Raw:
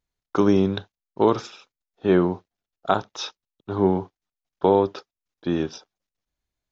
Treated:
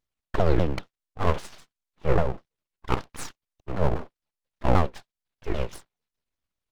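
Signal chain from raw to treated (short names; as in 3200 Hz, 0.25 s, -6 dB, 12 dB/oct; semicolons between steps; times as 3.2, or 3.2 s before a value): repeated pitch sweeps -10 st, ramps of 0.198 s; full-wave rectifier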